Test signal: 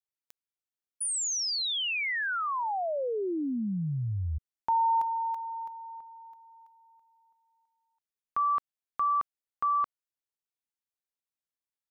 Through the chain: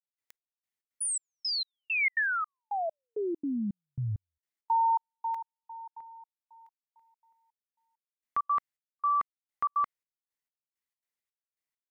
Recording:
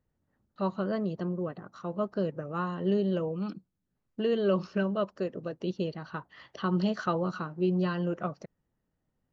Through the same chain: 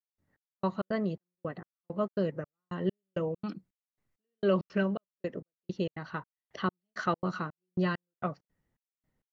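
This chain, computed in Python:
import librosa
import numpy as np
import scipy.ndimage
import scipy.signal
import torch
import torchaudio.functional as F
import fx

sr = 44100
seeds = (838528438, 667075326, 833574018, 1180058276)

y = fx.peak_eq(x, sr, hz=2000.0, db=9.0, octaves=0.34)
y = fx.step_gate(y, sr, bpm=166, pattern='..xx...xx.xxx.', floor_db=-60.0, edge_ms=4.5)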